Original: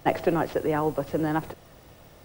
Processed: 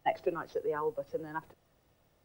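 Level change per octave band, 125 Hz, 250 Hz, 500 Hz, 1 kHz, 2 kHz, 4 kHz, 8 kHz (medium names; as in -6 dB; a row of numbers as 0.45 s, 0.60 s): -18.5 dB, -15.5 dB, -7.5 dB, -7.5 dB, -8.5 dB, no reading, under -15 dB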